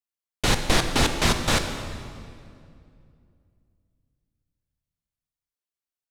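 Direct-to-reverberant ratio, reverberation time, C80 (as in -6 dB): 6.0 dB, 2.4 s, 8.5 dB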